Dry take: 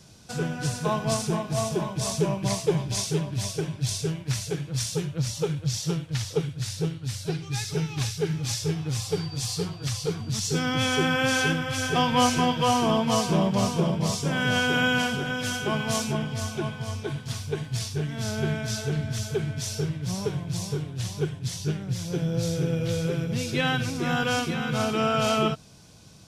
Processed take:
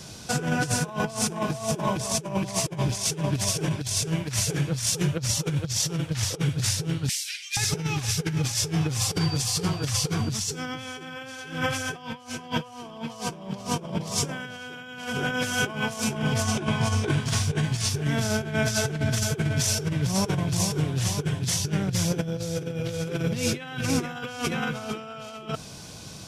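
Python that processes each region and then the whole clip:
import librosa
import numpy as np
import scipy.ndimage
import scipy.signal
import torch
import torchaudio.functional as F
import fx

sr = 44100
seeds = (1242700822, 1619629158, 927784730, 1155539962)

y = fx.chain(x, sr, fx.steep_highpass(hz=2000.0, slope=36),
    fx.transformer_sat(knee_hz=1500.0), at=(7.09, 7.57))
y = fx.chain(y, sr, fx.peak_eq(hz=12000.0, db=-8.5, octaves=0.28),
    fx.doubler(ms=19.0, db=-5.0), at=(16.43, 17.89))
y = fx.low_shelf(y, sr, hz=240.0, db=-4.5)
y = fx.over_compress(y, sr, threshold_db=-33.0, ratio=-0.5)
y = fx.dynamic_eq(y, sr, hz=4000.0, q=2.1, threshold_db=-50.0, ratio=4.0, max_db=-5)
y = y * 10.0 ** (6.5 / 20.0)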